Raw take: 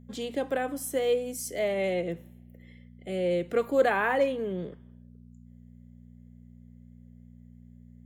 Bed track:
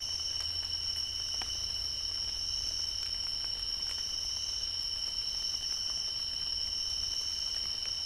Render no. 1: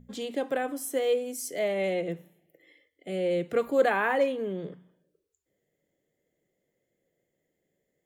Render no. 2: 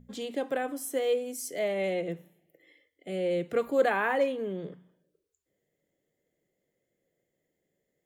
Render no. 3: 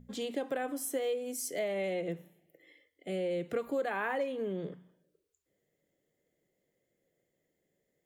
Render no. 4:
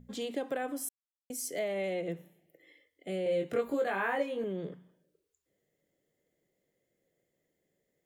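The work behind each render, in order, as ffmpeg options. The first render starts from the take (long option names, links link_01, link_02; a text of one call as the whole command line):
ffmpeg -i in.wav -af "bandreject=frequency=60:width_type=h:width=4,bandreject=frequency=120:width_type=h:width=4,bandreject=frequency=180:width_type=h:width=4,bandreject=frequency=240:width_type=h:width=4" out.wav
ffmpeg -i in.wav -af "volume=-1.5dB" out.wav
ffmpeg -i in.wav -af "acompressor=threshold=-30dB:ratio=6" out.wav
ffmpeg -i in.wav -filter_complex "[0:a]asettb=1/sr,asplit=3[link_01][link_02][link_03];[link_01]atrim=end=3.244[link_04];[link_02]atrim=start=3.24:end=4.44,asetpts=PTS-STARTPTS,afade=type=in:duration=0.004:curve=qsin,afade=type=out:start_time=1.196:duration=0.004:curve=qsin,asplit=2[link_05][link_06];[link_06]adelay=21,volume=-2dB[link_07];[link_05][link_07]amix=inputs=2:normalize=0,atrim=end_sample=52920[link_08];[link_03]atrim=start=4.436[link_09];[link_04][link_08]acrossfade=duration=0.004:curve1=hsin:curve2=qsin[link_10];[link_10][link_09]acrossfade=duration=0.004:curve1=qsin:curve2=hsin,asplit=3[link_11][link_12][link_13];[link_11]atrim=end=0.89,asetpts=PTS-STARTPTS,afade=type=out:start_time=0.886:duration=0.004:curve=hsin[link_14];[link_12]atrim=start=0.89:end=1.3,asetpts=PTS-STARTPTS,volume=0[link_15];[link_13]atrim=start=1.3,asetpts=PTS-STARTPTS,afade=type=in:duration=0.004:curve=hsin[link_16];[link_14][link_15][link_16]concat=n=3:v=0:a=1" out.wav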